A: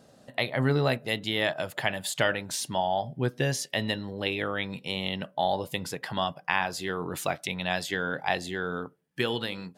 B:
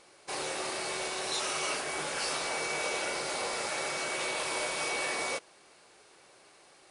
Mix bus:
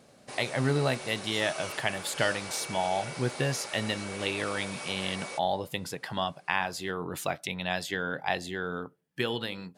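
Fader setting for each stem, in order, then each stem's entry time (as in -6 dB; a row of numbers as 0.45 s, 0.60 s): -2.0 dB, -6.5 dB; 0.00 s, 0.00 s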